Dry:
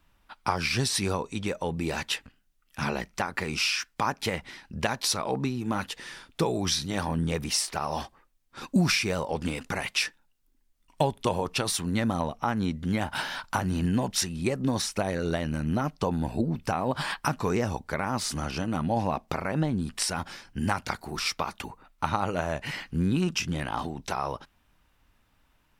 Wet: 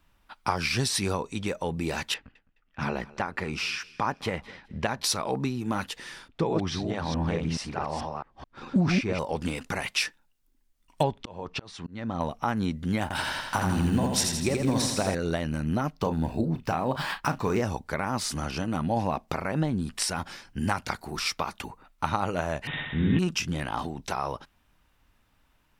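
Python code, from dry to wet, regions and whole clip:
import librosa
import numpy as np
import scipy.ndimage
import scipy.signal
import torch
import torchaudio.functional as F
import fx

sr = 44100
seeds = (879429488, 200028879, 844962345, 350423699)

y = fx.chain(x, sr, fx.env_lowpass(base_hz=2500.0, full_db=-27.5),
    fx.high_shelf(hz=4100.0, db=-11.0),
    fx.echo_feedback(ms=210, feedback_pct=25, wet_db=-21.0), at=(2.14, 5.04))
y = fx.chain(y, sr, fx.reverse_delay(ms=216, wet_db=-2.5),
    fx.spacing_loss(db_at_10k=21),
    fx.doppler_dist(depth_ms=0.12), at=(6.28, 9.19))
y = fx.chain(y, sr, fx.gaussian_blur(sigma=1.6),
    fx.auto_swell(attack_ms=391.0), at=(11.03, 12.21))
y = fx.chain(y, sr, fx.block_float(bits=7),
    fx.peak_eq(hz=8300.0, db=4.0, octaves=0.26),
    fx.echo_feedback(ms=83, feedback_pct=56, wet_db=-4.0), at=(13.02, 15.15))
y = fx.chain(y, sr, fx.median_filter(points=5),
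    fx.doubler(ms=37.0, db=-11), at=(15.92, 17.62))
y = fx.chain(y, sr, fx.sample_sort(block=8),
    fx.room_flutter(wall_m=10.7, rt60_s=1.2),
    fx.resample_bad(factor=6, down='none', up='filtered'), at=(22.67, 23.19))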